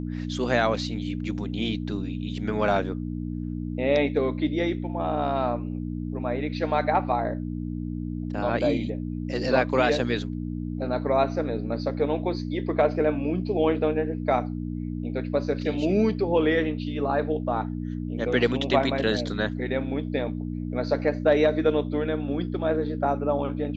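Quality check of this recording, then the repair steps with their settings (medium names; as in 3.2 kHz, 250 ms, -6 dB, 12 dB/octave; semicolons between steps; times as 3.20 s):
hum 60 Hz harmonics 5 -31 dBFS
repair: de-hum 60 Hz, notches 5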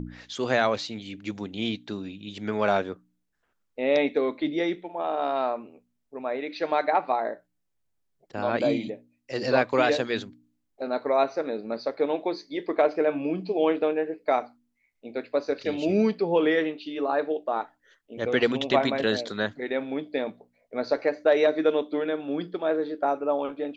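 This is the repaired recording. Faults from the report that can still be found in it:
nothing left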